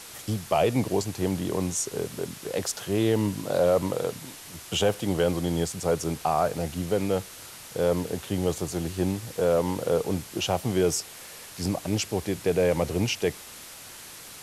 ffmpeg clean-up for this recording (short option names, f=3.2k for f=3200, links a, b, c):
-af "afwtdn=0.0079"